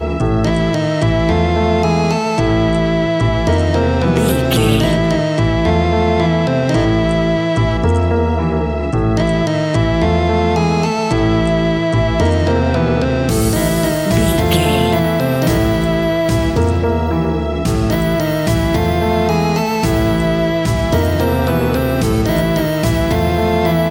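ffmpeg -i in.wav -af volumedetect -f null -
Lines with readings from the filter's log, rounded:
mean_volume: -14.1 dB
max_volume: -1.7 dB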